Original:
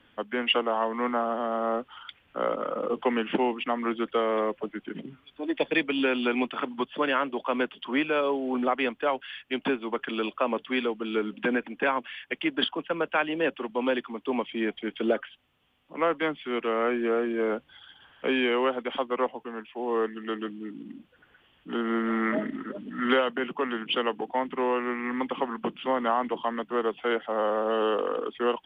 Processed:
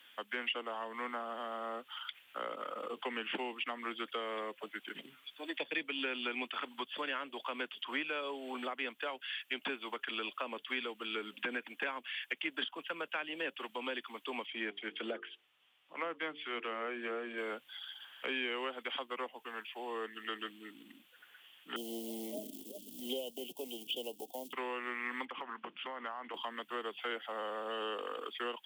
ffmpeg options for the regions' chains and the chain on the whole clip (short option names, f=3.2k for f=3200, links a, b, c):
-filter_complex "[0:a]asettb=1/sr,asplit=3[a][b][c];[a]atrim=end=14.464[d];[b]atrim=start=14.46:end=17.38,asetpts=PTS-STARTPTS,afade=t=in:d=0.004:c=qsin,afade=t=out:st=2.916:d=0.004:c=qsin,aemphasis=mode=reproduction:type=75fm,bandreject=f=50:t=h:w=6,bandreject=f=100:t=h:w=6,bandreject=f=150:t=h:w=6,bandreject=f=200:t=h:w=6,bandreject=f=250:t=h:w=6,bandreject=f=300:t=h:w=6,bandreject=f=350:t=h:w=6,bandreject=f=400:t=h:w=6,bandreject=f=450:t=h:w=6[e];[c]atrim=start=17.376[f];[d][e]acrossfade=d=0.004:c1=hsin:c2=qsin[g];[g][f]acrossfade=d=0.004:c1=qsin:c2=hsin,asettb=1/sr,asplit=3[h][i][j];[h]atrim=end=21.764[k];[i]atrim=start=21.76:end=24.53,asetpts=PTS-STARTPTS,afade=t=in:d=0.004:c=qsin,afade=t=out:st=2.766:d=0.004:c=qsin,equalizer=f=72:w=4.1:g=10.5,acrusher=bits=7:mode=log:mix=0:aa=0.000001,asuperstop=centerf=1500:order=8:qfactor=0.62[l];[j]atrim=start=24.526[m];[k][l]acrossfade=d=0.004:c1=hsin:c2=qsin[n];[n][m]acrossfade=d=0.004:c1=qsin:c2=hsin,asettb=1/sr,asplit=3[o][p][q];[o]atrim=end=25.254[r];[p]atrim=start=25.25:end=26.34,asetpts=PTS-STARTPTS,afade=t=in:d=0.004:c=qsin,afade=t=out:st=1.086:d=0.004:c=qsin,lowpass=2.1k,acompressor=threshold=-31dB:ratio=4:attack=3.2:release=140:knee=1:detection=peak[s];[q]atrim=start=26.336[t];[r][s]acrossfade=d=0.004:c1=hsin:c2=qsin[u];[u][t]acrossfade=d=0.004:c1=qsin:c2=hsin,acrossover=split=410[v][w];[w]acompressor=threshold=-34dB:ratio=6[x];[v][x]amix=inputs=2:normalize=0,aderivative,acrossover=split=2700[y][z];[z]acompressor=threshold=-57dB:ratio=4:attack=1:release=60[aa];[y][aa]amix=inputs=2:normalize=0,volume=12.5dB"